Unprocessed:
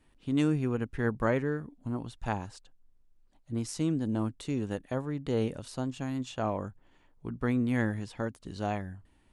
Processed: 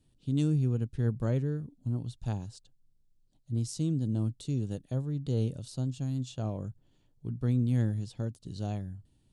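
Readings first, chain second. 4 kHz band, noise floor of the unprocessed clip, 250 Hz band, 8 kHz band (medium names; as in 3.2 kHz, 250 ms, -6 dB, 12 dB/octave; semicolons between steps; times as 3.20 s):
-2.5 dB, -64 dBFS, -2.5 dB, -1.0 dB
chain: graphic EQ 125/1000/2000/4000/8000 Hz +12/-8/-11/+6/+4 dB; trim -5 dB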